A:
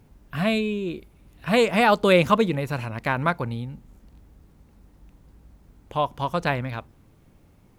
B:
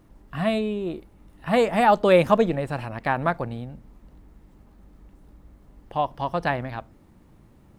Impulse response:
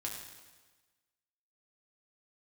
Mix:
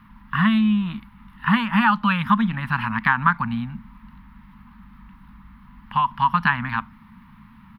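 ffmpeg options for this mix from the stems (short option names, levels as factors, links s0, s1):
-filter_complex "[0:a]volume=0.158[s0];[1:a]acompressor=threshold=0.0562:ratio=4,adelay=0.8,volume=1.19[s1];[s0][s1]amix=inputs=2:normalize=0,firequalizer=gain_entry='entry(120,0);entry(220,12);entry(360,-30);entry(660,-16);entry(960,14);entry(1400,12);entry(2000,12);entry(3400,7);entry(7500,-18);entry(11000,0)':delay=0.05:min_phase=1"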